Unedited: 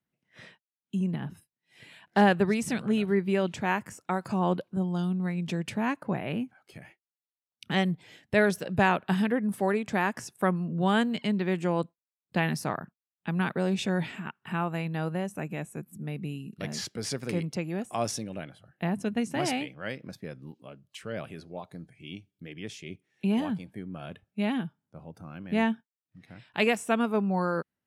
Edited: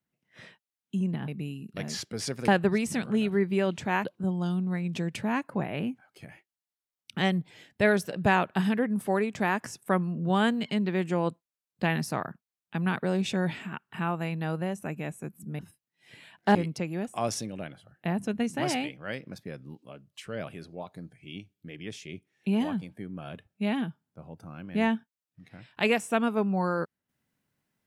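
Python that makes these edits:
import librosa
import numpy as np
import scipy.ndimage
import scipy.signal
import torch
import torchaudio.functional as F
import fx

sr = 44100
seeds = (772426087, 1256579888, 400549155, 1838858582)

y = fx.edit(x, sr, fx.swap(start_s=1.28, length_s=0.96, other_s=16.12, other_length_s=1.2),
    fx.cut(start_s=3.8, length_s=0.77), tone=tone)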